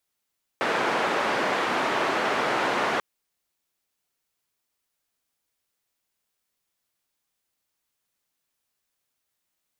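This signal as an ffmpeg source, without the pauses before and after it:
-f lavfi -i "anoisesrc=c=white:d=2.39:r=44100:seed=1,highpass=f=280,lowpass=f=1400,volume=-7.7dB"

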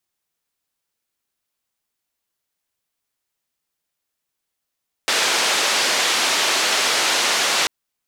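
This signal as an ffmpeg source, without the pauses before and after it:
-f lavfi -i "anoisesrc=c=white:d=2.59:r=44100:seed=1,highpass=f=380,lowpass=f=5300,volume=-8dB"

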